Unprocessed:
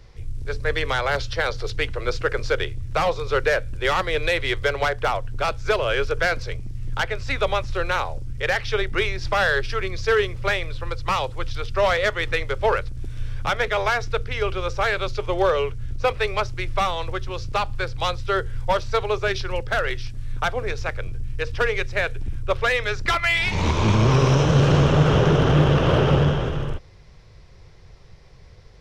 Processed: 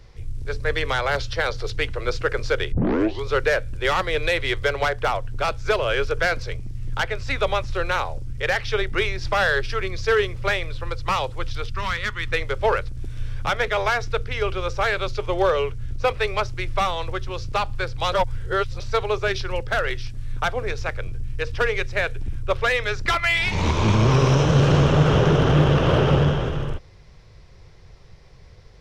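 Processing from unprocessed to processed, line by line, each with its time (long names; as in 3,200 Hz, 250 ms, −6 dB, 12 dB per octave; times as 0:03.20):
0:02.72: tape start 0.54 s
0:11.70–0:12.32: drawn EQ curve 250 Hz 0 dB, 660 Hz −23 dB, 970 Hz −3 dB
0:18.12–0:18.80: reverse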